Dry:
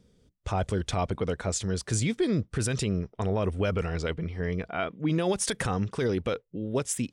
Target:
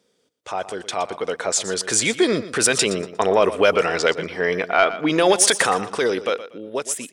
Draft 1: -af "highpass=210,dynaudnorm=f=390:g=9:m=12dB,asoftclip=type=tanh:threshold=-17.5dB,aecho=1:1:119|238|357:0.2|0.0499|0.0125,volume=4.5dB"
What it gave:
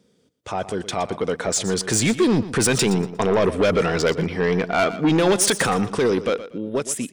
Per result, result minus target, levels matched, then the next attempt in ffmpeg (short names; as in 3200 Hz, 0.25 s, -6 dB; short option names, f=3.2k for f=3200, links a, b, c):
soft clip: distortion +16 dB; 250 Hz band +5.5 dB
-af "highpass=210,dynaudnorm=f=390:g=9:m=12dB,asoftclip=type=tanh:threshold=-6.5dB,aecho=1:1:119|238|357:0.2|0.0499|0.0125,volume=4.5dB"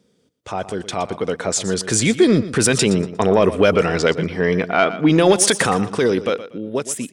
250 Hz band +5.5 dB
-af "highpass=470,dynaudnorm=f=390:g=9:m=12dB,asoftclip=type=tanh:threshold=-6.5dB,aecho=1:1:119|238|357:0.2|0.0499|0.0125,volume=4.5dB"